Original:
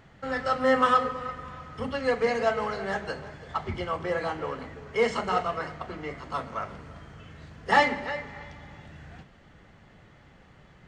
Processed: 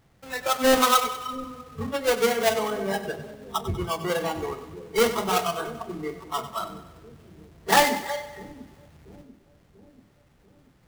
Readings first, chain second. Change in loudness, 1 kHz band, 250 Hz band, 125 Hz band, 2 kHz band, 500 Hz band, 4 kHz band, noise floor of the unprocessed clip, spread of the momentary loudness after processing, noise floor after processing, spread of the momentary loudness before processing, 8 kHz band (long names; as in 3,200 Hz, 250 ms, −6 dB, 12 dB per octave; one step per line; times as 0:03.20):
+3.0 dB, +1.5 dB, +3.5 dB, +2.0 dB, +0.5 dB, +2.5 dB, +9.0 dB, −55 dBFS, 18 LU, −60 dBFS, 24 LU, +18.5 dB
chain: each half-wave held at its own peak
in parallel at −1 dB: downward compressor, threshold −33 dBFS, peak gain reduction 19 dB
on the sum: noise reduction from a noise print of the clip's start 15 dB
echo with a time of its own for lows and highs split 400 Hz, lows 688 ms, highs 96 ms, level −12.5 dB
level −2.5 dB